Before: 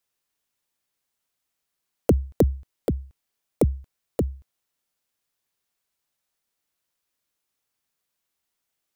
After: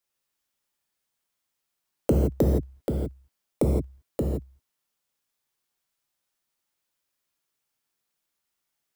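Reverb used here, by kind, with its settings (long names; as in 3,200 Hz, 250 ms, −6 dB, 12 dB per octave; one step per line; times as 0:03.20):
reverb whose tail is shaped and stops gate 190 ms flat, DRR −1 dB
level −4 dB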